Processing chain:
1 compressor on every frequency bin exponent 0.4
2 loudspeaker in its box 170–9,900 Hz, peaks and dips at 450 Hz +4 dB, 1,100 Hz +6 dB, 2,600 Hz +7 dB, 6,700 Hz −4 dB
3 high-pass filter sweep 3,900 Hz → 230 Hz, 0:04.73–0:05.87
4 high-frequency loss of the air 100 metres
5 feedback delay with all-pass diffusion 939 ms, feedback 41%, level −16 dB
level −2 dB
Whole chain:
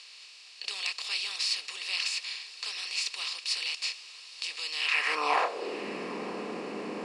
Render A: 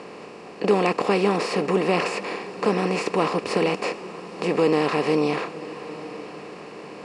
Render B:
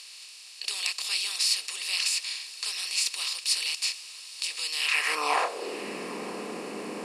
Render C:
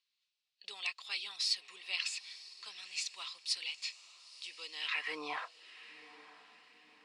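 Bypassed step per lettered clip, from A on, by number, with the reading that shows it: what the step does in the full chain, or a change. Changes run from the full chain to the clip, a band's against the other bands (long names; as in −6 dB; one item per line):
3, 250 Hz band +16.0 dB
4, 8 kHz band +9.0 dB
1, 8 kHz band +9.0 dB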